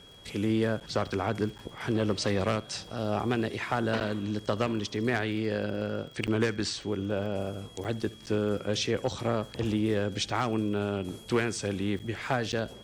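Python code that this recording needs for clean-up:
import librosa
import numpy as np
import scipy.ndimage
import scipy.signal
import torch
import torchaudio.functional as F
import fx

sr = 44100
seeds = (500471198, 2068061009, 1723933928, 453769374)

y = fx.fix_declick_ar(x, sr, threshold=6.5)
y = fx.notch(y, sr, hz=3300.0, q=30.0)
y = fx.fix_interpolate(y, sr, at_s=(0.8, 1.58, 4.0, 6.27, 7.84, 8.26, 11.99, 12.52), length_ms=8.4)
y = fx.fix_echo_inverse(y, sr, delay_ms=72, level_db=-21.0)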